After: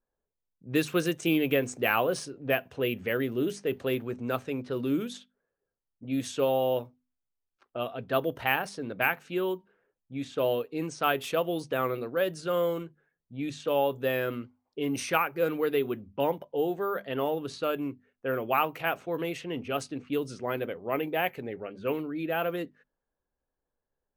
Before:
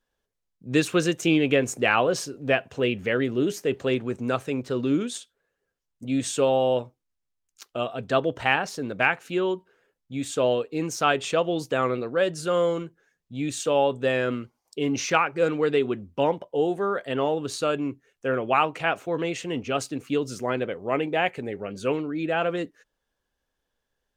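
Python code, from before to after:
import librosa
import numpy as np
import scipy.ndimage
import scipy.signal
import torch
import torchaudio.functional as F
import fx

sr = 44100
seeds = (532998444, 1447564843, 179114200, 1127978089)

y = np.repeat(scipy.signal.resample_poly(x, 1, 3), 3)[:len(x)]
y = fx.hum_notches(y, sr, base_hz=50, count=5)
y = fx.env_lowpass(y, sr, base_hz=1100.0, full_db=-22.0)
y = y * librosa.db_to_amplitude(-4.5)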